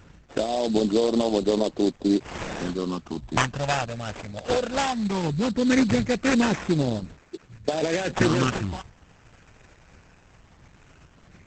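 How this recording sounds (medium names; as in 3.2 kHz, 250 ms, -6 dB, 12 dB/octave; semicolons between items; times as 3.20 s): phasing stages 12, 0.18 Hz, lowest notch 320–1700 Hz; aliases and images of a low sample rate 4.2 kHz, jitter 20%; Opus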